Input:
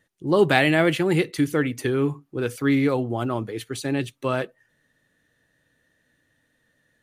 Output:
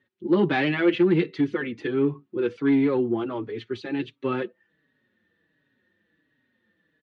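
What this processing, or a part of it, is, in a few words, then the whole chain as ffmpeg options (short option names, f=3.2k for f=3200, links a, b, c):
barber-pole flanger into a guitar amplifier: -filter_complex "[0:a]asplit=2[a][b];[b]adelay=4.9,afreqshift=-1.4[c];[a][c]amix=inputs=2:normalize=1,asoftclip=type=tanh:threshold=-15.5dB,highpass=86,equalizer=f=130:t=q:w=4:g=-5,equalizer=f=210:t=q:w=4:g=7,equalizer=f=360:t=q:w=4:g=8,equalizer=f=670:t=q:w=4:g=-6,lowpass=f=3.9k:w=0.5412,lowpass=f=3.9k:w=1.3066"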